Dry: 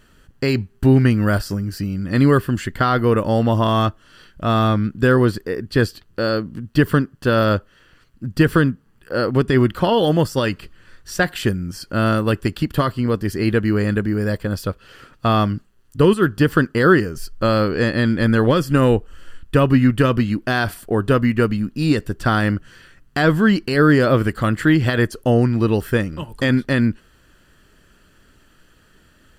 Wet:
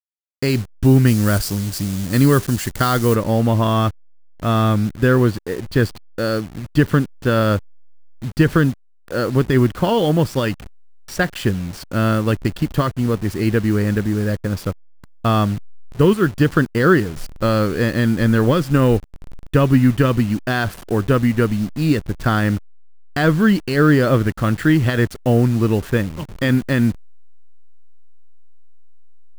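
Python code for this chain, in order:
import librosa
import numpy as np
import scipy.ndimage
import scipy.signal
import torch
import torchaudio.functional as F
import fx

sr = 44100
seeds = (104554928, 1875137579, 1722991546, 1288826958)

y = fx.delta_hold(x, sr, step_db=-30.5)
y = fx.bass_treble(y, sr, bass_db=3, treble_db=fx.steps((0.0, 5.0), (1.06, 12.0), (3.14, 0.0)))
y = F.gain(torch.from_numpy(y), -1.0).numpy()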